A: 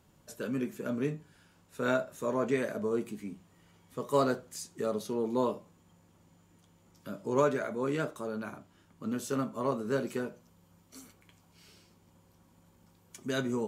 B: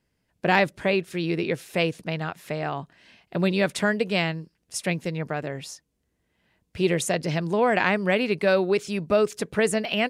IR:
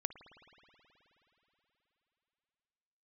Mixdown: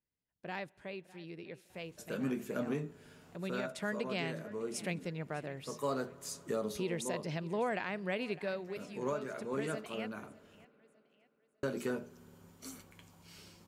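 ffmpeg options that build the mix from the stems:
-filter_complex "[0:a]bandreject=f=60:t=h:w=6,bandreject=f=120:t=h:w=6,bandreject=f=180:t=h:w=6,bandreject=f=240:t=h:w=6,bandreject=f=300:t=h:w=6,bandreject=f=360:t=h:w=6,bandreject=f=420:t=h:w=6,adelay=1700,volume=2dB,asplit=3[a][b][c];[a]atrim=end=10.65,asetpts=PTS-STARTPTS,afade=t=out:st=10.646:d=0.004:c=hsin[d];[b]atrim=start=10.65:end=11.63,asetpts=PTS-STARTPTS,volume=0[e];[c]atrim=start=11.63,asetpts=PTS-STARTPTS,afade=t=in:d=0.004:c=hsin[f];[d][e][f]concat=n=3:v=0:a=1,asplit=2[g][h];[h]volume=-16.5dB[i];[1:a]volume=-12dB,afade=t=in:st=3.26:d=0.78:silence=0.298538,afade=t=out:st=8.29:d=0.29:silence=0.354813,asplit=4[j][k][l][m];[k]volume=-16dB[n];[l]volume=-19dB[o];[m]apad=whole_len=678188[p];[g][p]sidechaincompress=threshold=-49dB:ratio=8:attack=34:release=1450[q];[2:a]atrim=start_sample=2205[r];[i][n]amix=inputs=2:normalize=0[s];[s][r]afir=irnorm=-1:irlink=0[t];[o]aecho=0:1:604|1208|1812|2416|3020:1|0.37|0.137|0.0507|0.0187[u];[q][j][t][u]amix=inputs=4:normalize=0,alimiter=level_in=1dB:limit=-24dB:level=0:latency=1:release=343,volume=-1dB"

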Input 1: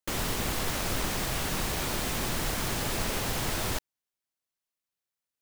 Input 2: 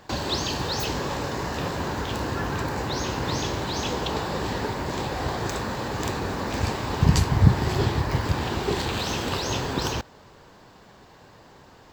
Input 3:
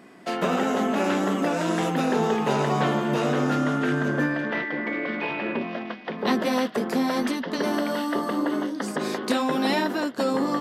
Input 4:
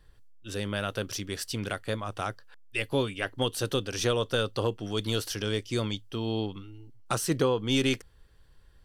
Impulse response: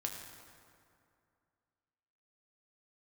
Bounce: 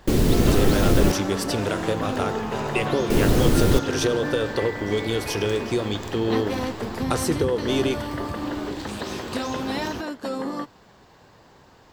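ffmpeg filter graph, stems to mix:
-filter_complex "[0:a]lowshelf=f=580:t=q:w=1.5:g=13.5,volume=1dB,asplit=3[a][b][c];[a]atrim=end=1.12,asetpts=PTS-STARTPTS,afade=t=out:st=1.116:d=0.004:c=hsin[d];[b]atrim=start=1.12:end=3.1,asetpts=PTS-STARTPTS,volume=0[e];[c]atrim=start=3.1,asetpts=PTS-STARTPTS,afade=t=in:d=0.004:c=hsin[f];[d][e][f]concat=n=3:v=0:a=1[g];[1:a]acompressor=threshold=-35dB:ratio=2,volume=-2dB[h];[2:a]adelay=50,volume=-5dB[i];[3:a]equalizer=f=420:w=1.5:g=9.5,acompressor=threshold=-26dB:ratio=6,volume=2.5dB,asplit=2[j][k];[k]volume=-6.5dB[l];[4:a]atrim=start_sample=2205[m];[l][m]afir=irnorm=-1:irlink=0[n];[g][h][i][j][n]amix=inputs=5:normalize=0"

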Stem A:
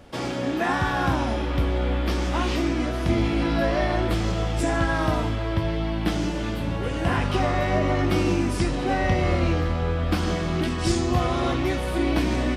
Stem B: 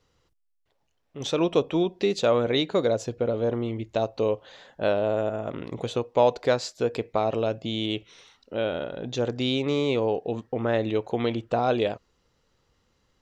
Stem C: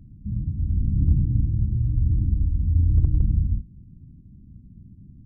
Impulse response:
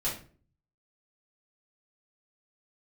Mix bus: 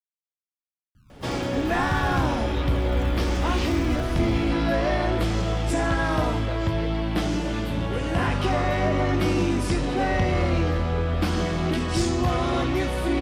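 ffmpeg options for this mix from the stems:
-filter_complex "[0:a]asoftclip=type=tanh:threshold=-15dB,adelay=1100,volume=1dB[a];[1:a]aeval=exprs='sgn(val(0))*max(abs(val(0))-0.00211,0)':c=same,volume=-16dB[b];[2:a]acrusher=samples=28:mix=1:aa=0.000001:lfo=1:lforange=44.8:lforate=0.49,adelay=950,volume=-11dB[c];[a][b][c]amix=inputs=3:normalize=0"

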